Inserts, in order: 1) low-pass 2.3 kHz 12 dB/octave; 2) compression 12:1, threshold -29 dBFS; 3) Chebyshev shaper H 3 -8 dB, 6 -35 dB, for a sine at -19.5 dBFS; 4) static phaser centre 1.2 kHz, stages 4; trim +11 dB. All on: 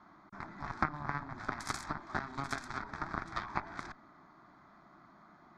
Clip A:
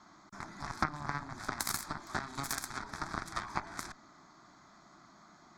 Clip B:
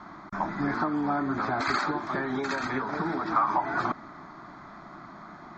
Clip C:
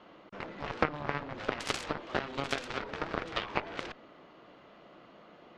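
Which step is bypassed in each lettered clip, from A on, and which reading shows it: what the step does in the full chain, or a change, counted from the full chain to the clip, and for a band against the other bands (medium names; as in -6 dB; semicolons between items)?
1, 8 kHz band +11.0 dB; 3, crest factor change -12.0 dB; 4, 500 Hz band +9.0 dB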